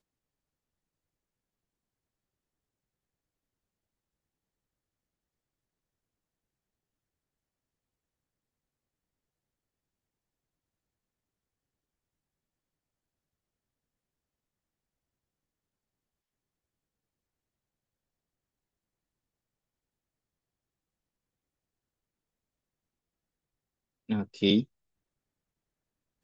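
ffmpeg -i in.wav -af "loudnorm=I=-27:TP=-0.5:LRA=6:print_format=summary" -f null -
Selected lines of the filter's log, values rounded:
Input Integrated:    -28.4 LUFS
Input True Peak:     -10.6 dBTP
Input LRA:             0.0 LU
Input Threshold:     -39.3 LUFS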